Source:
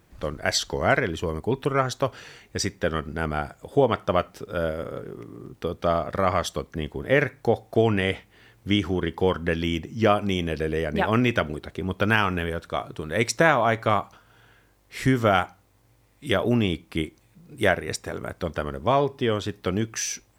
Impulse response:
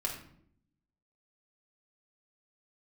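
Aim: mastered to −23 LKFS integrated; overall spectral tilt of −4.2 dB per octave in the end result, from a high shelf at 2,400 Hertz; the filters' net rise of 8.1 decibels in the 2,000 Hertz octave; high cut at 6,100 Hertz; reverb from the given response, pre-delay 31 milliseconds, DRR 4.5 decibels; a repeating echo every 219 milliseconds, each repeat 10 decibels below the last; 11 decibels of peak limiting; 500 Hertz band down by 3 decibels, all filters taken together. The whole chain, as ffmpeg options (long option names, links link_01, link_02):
-filter_complex "[0:a]lowpass=6100,equalizer=frequency=500:width_type=o:gain=-4.5,equalizer=frequency=2000:width_type=o:gain=8.5,highshelf=frequency=2400:gain=4.5,alimiter=limit=-10.5dB:level=0:latency=1,aecho=1:1:219|438|657|876:0.316|0.101|0.0324|0.0104,asplit=2[link_01][link_02];[1:a]atrim=start_sample=2205,adelay=31[link_03];[link_02][link_03]afir=irnorm=-1:irlink=0,volume=-8dB[link_04];[link_01][link_04]amix=inputs=2:normalize=0,volume=1.5dB"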